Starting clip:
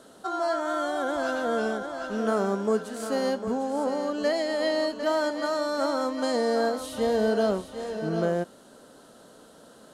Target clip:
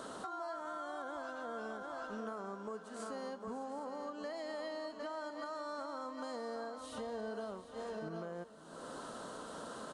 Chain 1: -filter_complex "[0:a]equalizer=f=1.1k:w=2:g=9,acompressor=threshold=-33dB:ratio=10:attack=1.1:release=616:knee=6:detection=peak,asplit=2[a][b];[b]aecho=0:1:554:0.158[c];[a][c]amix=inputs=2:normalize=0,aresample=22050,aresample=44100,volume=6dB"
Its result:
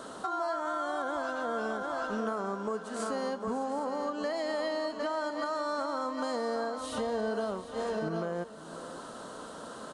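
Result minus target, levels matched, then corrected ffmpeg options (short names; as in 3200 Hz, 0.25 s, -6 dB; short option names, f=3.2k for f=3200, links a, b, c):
compressor: peak gain reduction -10 dB
-filter_complex "[0:a]equalizer=f=1.1k:w=2:g=9,acompressor=threshold=-44dB:ratio=10:attack=1.1:release=616:knee=6:detection=peak,asplit=2[a][b];[b]aecho=0:1:554:0.158[c];[a][c]amix=inputs=2:normalize=0,aresample=22050,aresample=44100,volume=6dB"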